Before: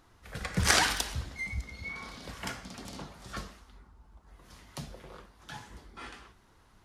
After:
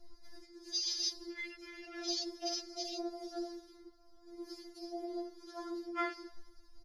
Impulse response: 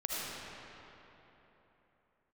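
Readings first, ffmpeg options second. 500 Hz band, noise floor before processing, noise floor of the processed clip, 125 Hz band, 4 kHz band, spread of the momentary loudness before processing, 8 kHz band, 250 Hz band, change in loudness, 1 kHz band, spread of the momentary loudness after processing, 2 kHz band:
+0.5 dB, -62 dBFS, -61 dBFS, under -35 dB, -3.5 dB, 24 LU, -8.0 dB, +0.5 dB, -7.0 dB, -8.0 dB, 19 LU, -13.5 dB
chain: -filter_complex "[0:a]aecho=1:1:32|62:0.251|0.224,areverse,acompressor=threshold=-41dB:ratio=16,areverse,equalizer=f=1.1k:t=o:w=0.87:g=-7.5,aecho=1:1:6:0.74,alimiter=level_in=17dB:limit=-24dB:level=0:latency=1:release=234,volume=-17dB,equalizer=f=4.9k:t=o:w=0.29:g=15,dynaudnorm=f=110:g=11:m=4dB,asplit=2[a][b];[1:a]atrim=start_sample=2205,afade=t=out:st=0.35:d=0.01,atrim=end_sample=15876,lowpass=4k[c];[b][c]afir=irnorm=-1:irlink=0,volume=-14dB[d];[a][d]amix=inputs=2:normalize=0,afwtdn=0.00562,afftfilt=real='re*4*eq(mod(b,16),0)':imag='im*4*eq(mod(b,16),0)':win_size=2048:overlap=0.75,volume=10dB"

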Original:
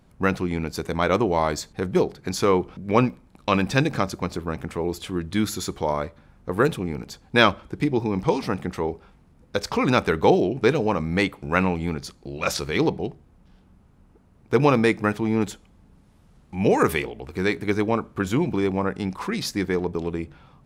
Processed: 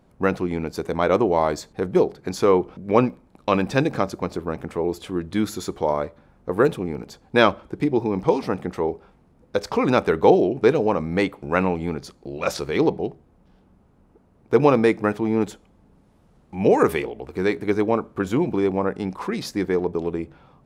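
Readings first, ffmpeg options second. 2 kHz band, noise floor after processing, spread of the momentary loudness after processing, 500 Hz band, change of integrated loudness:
-2.0 dB, -58 dBFS, 12 LU, +3.5 dB, +1.5 dB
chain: -af "equalizer=f=500:w=0.48:g=8,volume=-4.5dB"

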